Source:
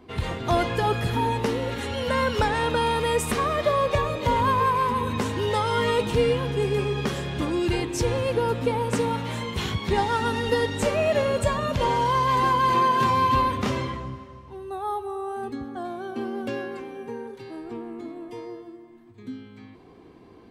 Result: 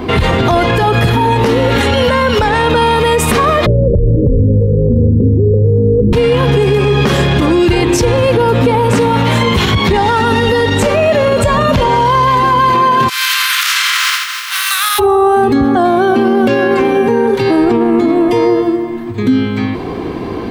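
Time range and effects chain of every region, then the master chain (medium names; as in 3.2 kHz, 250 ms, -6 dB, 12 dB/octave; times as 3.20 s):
3.66–6.13 s: steep low-pass 530 Hz 96 dB/octave + tilt EQ -4 dB/octave
13.08–14.98 s: spectral contrast reduction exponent 0.46 + Chebyshev high-pass 1.3 kHz, order 4 + compression 16:1, threshold -35 dBFS
whole clip: peaking EQ 8.5 kHz -5 dB 1.3 oct; compression, threshold -30 dBFS; loudness maximiser +32 dB; trim -2.5 dB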